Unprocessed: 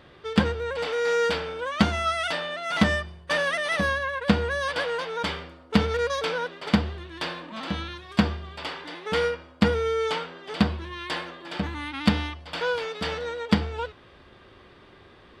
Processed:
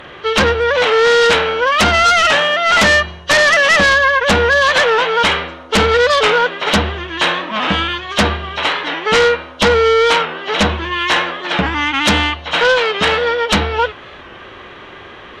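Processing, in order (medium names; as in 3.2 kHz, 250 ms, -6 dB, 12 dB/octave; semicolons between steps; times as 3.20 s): knee-point frequency compression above 2.7 kHz 1.5:1; bass shelf 400 Hz -10.5 dB; sine folder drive 16 dB, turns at -7 dBFS; warped record 45 rpm, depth 100 cents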